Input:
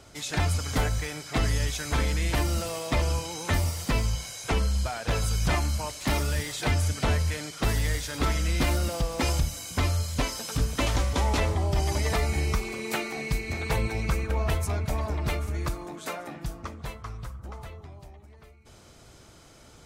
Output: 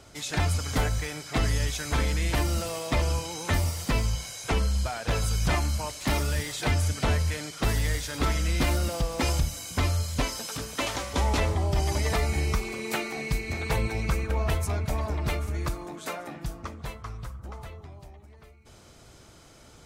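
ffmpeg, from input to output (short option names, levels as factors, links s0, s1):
-filter_complex "[0:a]asettb=1/sr,asplit=3[s0][s1][s2];[s0]atrim=end=10.474[s3];[s1]atrim=start=10.47:end=11.14,asetpts=PTS-STARTPTS,afade=t=in:d=0.004:c=qsin,afade=t=out:st=0.666:d=0.004:c=qsin,highpass=f=380:p=1[s4];[s2]atrim=start=11.136[s5];[s3][s4]acrossfade=d=0.004:c1=hsin:c2=qsin[s6];[s6][s5]acrossfade=d=0.004:c1=qsin:c2=hsin"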